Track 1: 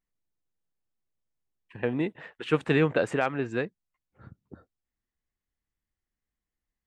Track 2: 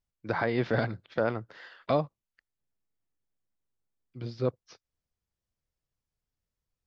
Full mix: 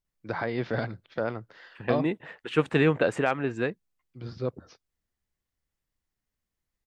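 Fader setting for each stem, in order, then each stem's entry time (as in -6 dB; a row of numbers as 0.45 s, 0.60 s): +1.0 dB, -2.0 dB; 0.05 s, 0.00 s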